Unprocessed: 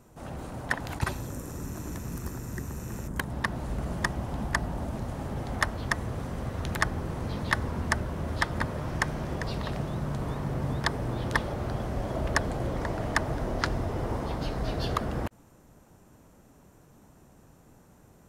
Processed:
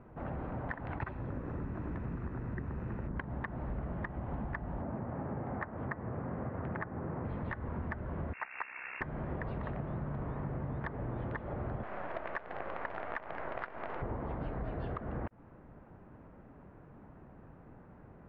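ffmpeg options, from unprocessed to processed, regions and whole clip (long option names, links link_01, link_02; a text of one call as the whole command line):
ffmpeg -i in.wav -filter_complex "[0:a]asettb=1/sr,asplit=3[link_01][link_02][link_03];[link_01]atrim=end=4.824[link_04];[link_02]atrim=start=4.82:end=7.25,asetpts=PTS-STARTPTS,afade=type=in:duration=0.004:curve=qsin,afade=type=out:start_time=2.426:duration=0.004:curve=qsin,highpass=110,lowpass=2200,aemphasis=mode=reproduction:type=50fm[link_05];[link_03]atrim=start=7.246[link_06];[link_04][link_05]acrossfade=duration=0.004:curve1=hsin:curve2=qsin[link_07];[link_07][link_06]acrossfade=duration=0.004:curve1=qsin:curve2=hsin,asettb=1/sr,asplit=3[link_08][link_09][link_10];[link_08]atrim=end=8.334[link_11];[link_09]atrim=start=8.33:end=9.01,asetpts=PTS-STARTPTS,afade=type=in:duration=0.004:curve=qsin,afade=type=out:start_time=0.676:duration=0.004:curve=qsin,lowshelf=frequency=350:gain=-8.5,aeval=exprs='val(0)*sin(2*PI*32*n/s)':channel_layout=same,lowpass=frequency=2400:width_type=q:width=0.5098,lowpass=frequency=2400:width_type=q:width=0.6013,lowpass=frequency=2400:width_type=q:width=0.9,lowpass=frequency=2400:width_type=q:width=2.563,afreqshift=-2800[link_12];[link_10]atrim=start=9.006[link_13];[link_11][link_12]acrossfade=duration=0.004:curve1=hsin:curve2=qsin[link_14];[link_14][link_13]acrossfade=duration=0.004:curve1=qsin:curve2=hsin,asettb=1/sr,asplit=3[link_15][link_16][link_17];[link_15]atrim=end=11.834[link_18];[link_16]atrim=start=11.83:end=14.02,asetpts=PTS-STARTPTS,afade=type=in:duration=0.004:curve=qsin,afade=type=out:start_time=2.186:duration=0.004:curve=qsin,highpass=690,acontrast=85,acrusher=bits=5:dc=4:mix=0:aa=0.000001[link_19];[link_17]atrim=start=14.016[link_20];[link_18][link_19]acrossfade=duration=0.004:curve1=hsin:curve2=qsin[link_21];[link_21][link_20]acrossfade=duration=0.004:curve1=qsin:curve2=hsin,lowpass=frequency=2100:width=0.5412,lowpass=frequency=2100:width=1.3066,alimiter=limit=-17.5dB:level=0:latency=1:release=326,acompressor=threshold=-37dB:ratio=6,volume=2dB" out.wav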